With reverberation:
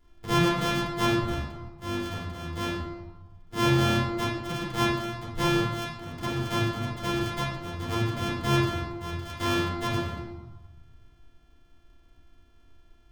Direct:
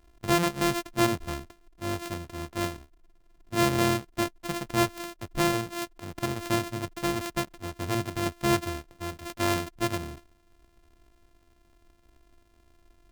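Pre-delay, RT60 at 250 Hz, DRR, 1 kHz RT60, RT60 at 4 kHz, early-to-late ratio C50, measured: 4 ms, 1.4 s, −7.5 dB, 1.3 s, 0.85 s, 2.0 dB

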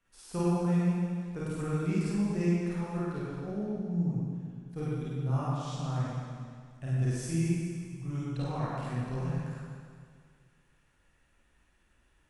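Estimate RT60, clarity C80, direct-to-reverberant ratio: 2.0 s, −2.5 dB, −9.5 dB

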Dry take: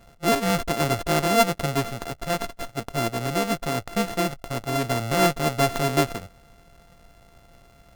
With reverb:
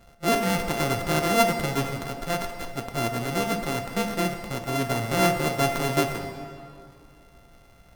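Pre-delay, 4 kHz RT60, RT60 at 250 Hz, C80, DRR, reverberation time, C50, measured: 6 ms, 1.6 s, 2.5 s, 8.0 dB, 5.5 dB, 2.4 s, 7.0 dB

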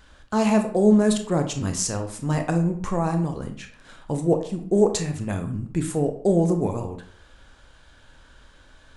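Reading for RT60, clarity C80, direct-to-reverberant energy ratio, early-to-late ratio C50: 0.55 s, 13.0 dB, 6.0 dB, 9.5 dB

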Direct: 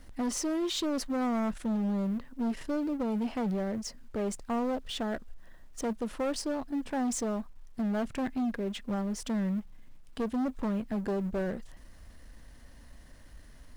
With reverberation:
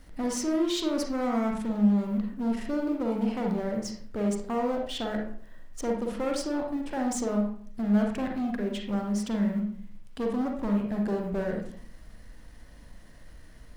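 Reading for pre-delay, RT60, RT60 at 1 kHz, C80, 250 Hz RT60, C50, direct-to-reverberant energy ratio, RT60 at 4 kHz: 36 ms, 0.50 s, 0.50 s, 9.5 dB, 0.65 s, 3.5 dB, 1.0 dB, 0.35 s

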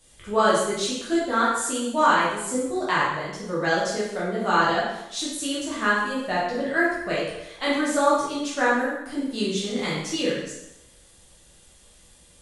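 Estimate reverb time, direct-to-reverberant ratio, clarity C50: 0.85 s, −8.0 dB, 0.5 dB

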